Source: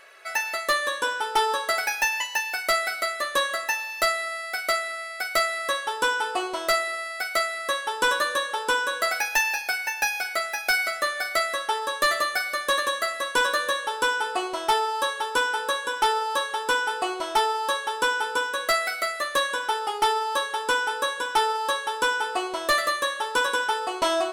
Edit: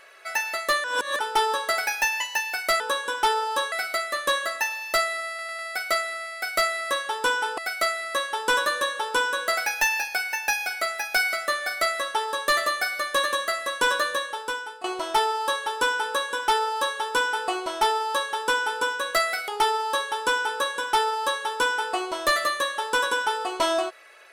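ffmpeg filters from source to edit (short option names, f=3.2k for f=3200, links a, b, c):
-filter_complex "[0:a]asplit=11[a][b][c][d][e][f][g][h][i][j][k];[a]atrim=end=0.842[l];[b]atrim=start=0.838:end=1.192,asetpts=PTS-STARTPTS,areverse[m];[c]atrim=start=1.188:end=2.802[n];[d]atrim=start=15.588:end=16.512[o];[e]atrim=start=2.798:end=4.472[p];[f]atrim=start=4.368:end=4.472[q];[g]atrim=start=4.368:end=4.472[r];[h]atrim=start=4.368:end=6.362[s];[i]atrim=start=7.118:end=14.38,asetpts=PTS-STARTPTS,afade=t=out:st=6.432:d=0.83:silence=0.149624[t];[j]atrim=start=14.38:end=19.022,asetpts=PTS-STARTPTS,afade=t=in:d=0.004:c=hsin:silence=0.149624[u];[k]atrim=start=19.898[v];[l][m]acrossfade=d=0.004:c1=hsin:c2=hsin[w];[w][n]acrossfade=d=0.004:c1=hsin:c2=hsin[x];[x][o]acrossfade=d=0.004:c1=hsin:c2=hsin[y];[y][p]acrossfade=d=0.004:c1=hsin:c2=hsin[z];[z][q]acrossfade=d=0.004:c1=hsin:c2=hsin[aa];[aa][r]acrossfade=d=0.004:c1=hsin:c2=hsin[ab];[ab][s]acrossfade=d=0.004:c1=hsin:c2=hsin[ac];[t][u]concat=n=2:v=0:a=1[ad];[ac][ad]acrossfade=d=0.004:c1=hsin:c2=hsin[ae];[ae][v]acrossfade=d=0.004:c1=hsin:c2=hsin"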